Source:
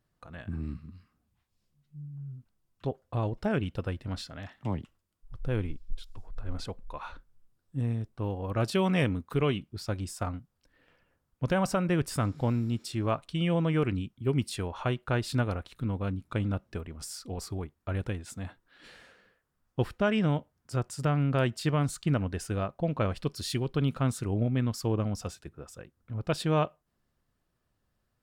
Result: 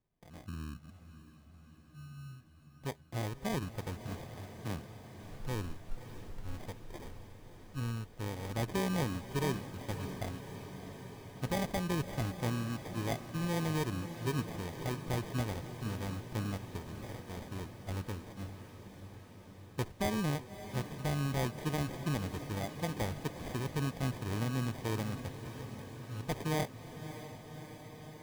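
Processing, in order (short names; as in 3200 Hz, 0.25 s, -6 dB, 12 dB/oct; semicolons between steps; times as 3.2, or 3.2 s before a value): sample-and-hold 32×; diffused feedback echo 0.605 s, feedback 74%, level -11.5 dB; gain -7 dB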